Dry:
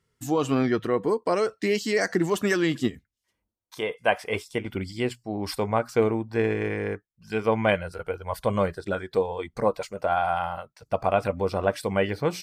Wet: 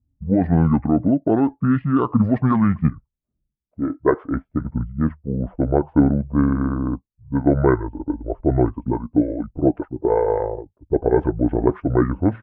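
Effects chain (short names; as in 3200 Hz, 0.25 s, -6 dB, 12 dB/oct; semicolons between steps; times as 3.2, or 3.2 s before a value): air absorption 500 m; low-pass opened by the level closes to 320 Hz, open at -18.5 dBFS; pitch shift -8 st; gain +8 dB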